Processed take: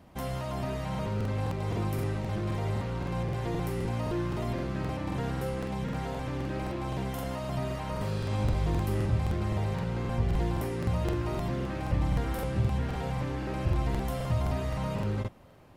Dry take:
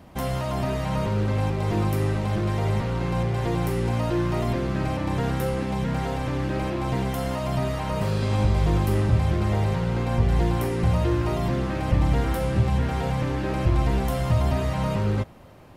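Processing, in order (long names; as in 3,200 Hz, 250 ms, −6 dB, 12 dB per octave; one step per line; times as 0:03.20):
regular buffer underruns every 0.26 s, samples 2,048, repeat, from 0:00.90
level −7 dB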